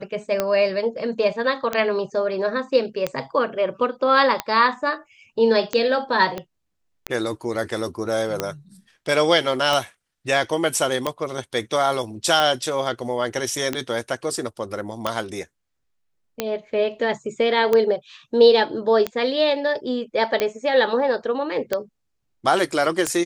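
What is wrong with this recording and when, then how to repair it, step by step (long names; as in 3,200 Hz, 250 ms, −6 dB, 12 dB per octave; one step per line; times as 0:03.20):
scratch tick 45 rpm −7 dBFS
0:06.38: click −15 dBFS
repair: click removal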